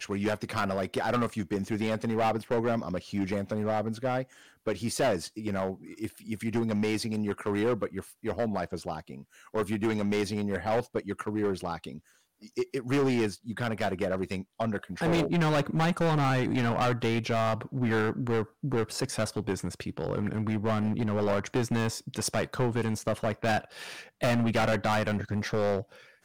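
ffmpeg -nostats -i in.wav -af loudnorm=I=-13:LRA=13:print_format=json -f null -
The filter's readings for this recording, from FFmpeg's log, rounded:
"input_i" : "-29.8",
"input_tp" : "-20.8",
"input_lra" : "3.9",
"input_thresh" : "-40.1",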